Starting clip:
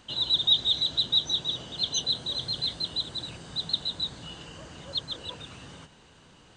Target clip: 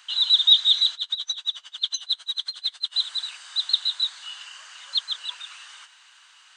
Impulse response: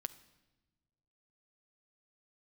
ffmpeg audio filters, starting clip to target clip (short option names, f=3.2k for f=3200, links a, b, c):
-filter_complex "[0:a]highpass=f=1.2k:w=0.5412,highpass=f=1.2k:w=1.3066,asettb=1/sr,asplit=3[a][b][c];[a]atrim=end=0.944[d];[b]atrim=start=0.94:end=2.95,asetpts=PTS-STARTPTS,afade=t=in:d=0.004:c=qsin,afade=t=out:st=2.006:d=0.004:c=qsin,aeval=exprs='val(0)*pow(10,-25*(0.5-0.5*cos(2*PI*11*n/s))/20)':c=same[e];[c]atrim=start=2.946[f];[d][e]acrossfade=d=0.004:c1=hsin:c2=qsin[g];[g][f]acrossfade=d=0.004:c1=qsin:c2=hsin,volume=6.5dB"